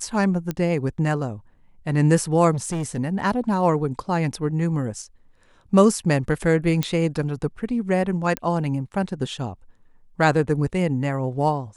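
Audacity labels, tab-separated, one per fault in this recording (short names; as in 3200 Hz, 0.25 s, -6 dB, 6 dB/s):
0.510000	0.510000	pop -13 dBFS
2.530000	2.990000	clipped -22.5 dBFS
6.830000	6.830000	pop -8 dBFS
8.370000	8.370000	pop -10 dBFS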